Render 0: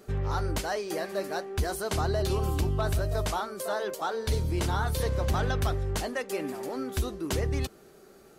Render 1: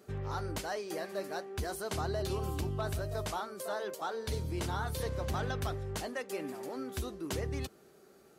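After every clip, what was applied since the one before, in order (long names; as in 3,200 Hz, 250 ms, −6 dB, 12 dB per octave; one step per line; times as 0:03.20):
high-pass filter 72 Hz
level −6 dB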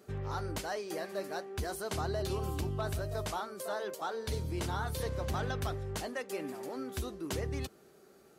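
no processing that can be heard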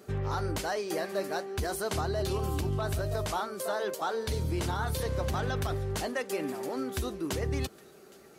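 brickwall limiter −28 dBFS, peak gain reduction 5.5 dB
delay with a high-pass on its return 814 ms, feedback 49%, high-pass 1,700 Hz, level −22 dB
level +6 dB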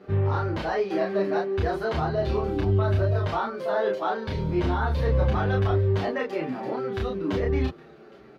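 high-frequency loss of the air 310 metres
double-tracking delay 31 ms −2 dB
barber-pole flanger 7.9 ms −0.68 Hz
level +8 dB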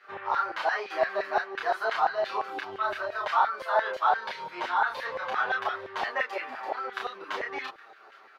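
auto-filter high-pass saw down 5.8 Hz 740–1,800 Hz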